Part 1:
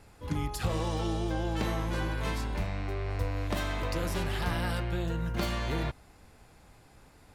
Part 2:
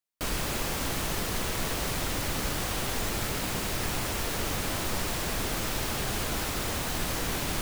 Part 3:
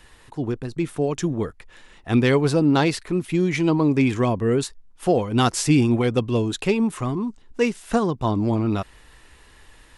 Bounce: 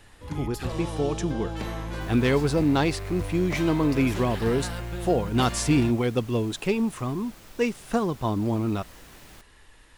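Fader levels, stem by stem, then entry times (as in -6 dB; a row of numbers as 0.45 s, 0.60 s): -1.5 dB, -18.5 dB, -4.0 dB; 0.00 s, 1.80 s, 0.00 s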